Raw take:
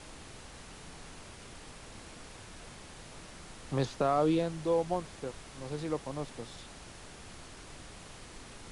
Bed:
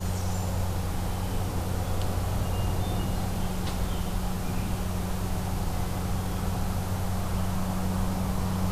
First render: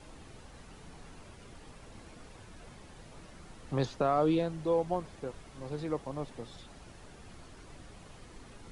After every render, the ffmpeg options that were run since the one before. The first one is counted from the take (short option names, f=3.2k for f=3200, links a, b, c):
-af "afftdn=nr=8:nf=-50"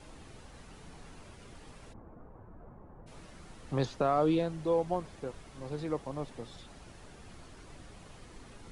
-filter_complex "[0:a]asplit=3[a][b][c];[a]afade=t=out:st=1.92:d=0.02[d];[b]lowpass=f=1.2k:w=0.5412,lowpass=f=1.2k:w=1.3066,afade=t=in:st=1.92:d=0.02,afade=t=out:st=3.06:d=0.02[e];[c]afade=t=in:st=3.06:d=0.02[f];[d][e][f]amix=inputs=3:normalize=0"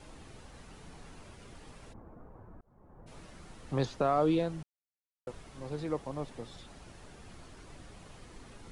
-filter_complex "[0:a]asplit=4[a][b][c][d];[a]atrim=end=2.61,asetpts=PTS-STARTPTS,afade=t=out:st=2.606:d=0.004:c=hsin[e];[b]atrim=start=2.61:end=4.63,asetpts=PTS-STARTPTS,afade=t=in:d=0.47,afade=t=out:st=2.016:d=0.004:c=hsin[f];[c]atrim=start=4.63:end=5.27,asetpts=PTS-STARTPTS,volume=0[g];[d]atrim=start=5.27,asetpts=PTS-STARTPTS,afade=t=in:d=0.004:c=hsin[h];[e][f][g][h]concat=n=4:v=0:a=1"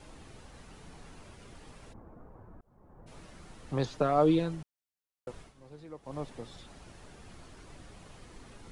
-filter_complex "[0:a]asettb=1/sr,asplit=3[a][b][c];[a]atrim=end=3.914[d];[b]atrim=start=3.91:end=4.55,asetpts=PTS-STARTPTS,afade=t=in:d=0.004:c=qsin,afade=t=out:st=0.636:d=0.004:c=qsin,aecho=1:1:6.7:0.58,atrim=end_sample=28224[e];[c]atrim=start=4.546[f];[d][e]acrossfade=d=0.004:c1=hsin:c2=qsin[g];[g][f]acrossfade=d=0.004:c1=qsin:c2=hsin,asplit=3[h][i][j];[h]atrim=end=5.54,asetpts=PTS-STARTPTS,afade=t=out:st=5.41:d=0.13:silence=0.251189[k];[i]atrim=start=5.54:end=6.02,asetpts=PTS-STARTPTS,volume=-12dB[l];[j]atrim=start=6.02,asetpts=PTS-STARTPTS,afade=t=in:d=0.13:silence=0.251189[m];[k][l][m]concat=n=3:v=0:a=1"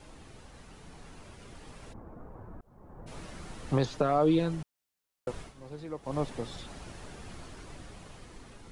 -af "dynaudnorm=f=820:g=5:m=7dB,alimiter=limit=-16dB:level=0:latency=1:release=427"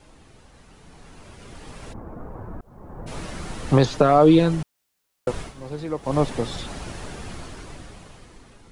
-af "dynaudnorm=f=280:g=11:m=11dB"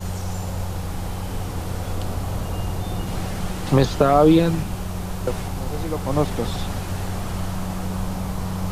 -filter_complex "[1:a]volume=1.5dB[a];[0:a][a]amix=inputs=2:normalize=0"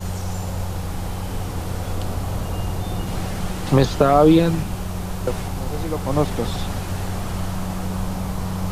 -af "volume=1dB"